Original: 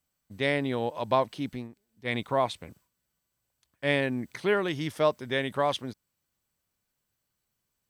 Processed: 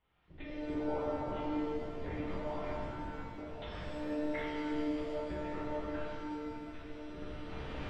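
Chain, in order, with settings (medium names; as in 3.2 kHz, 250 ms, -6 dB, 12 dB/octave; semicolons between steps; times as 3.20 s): recorder AGC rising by 16 dB/s; low-pass 2.2 kHz 6 dB/octave; de-hum 68.73 Hz, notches 35; low-pass that closes with the level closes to 670 Hz, closed at -22.5 dBFS; bass shelf 210 Hz -6 dB; slow attack 416 ms; compression 4:1, threshold -50 dBFS, peak gain reduction 19.5 dB; ever faster or slower copies 135 ms, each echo -5 st, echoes 3, each echo -6 dB; monotone LPC vocoder at 8 kHz 300 Hz; pitch-shifted reverb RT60 2.1 s, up +7 st, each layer -8 dB, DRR -7.5 dB; trim +5.5 dB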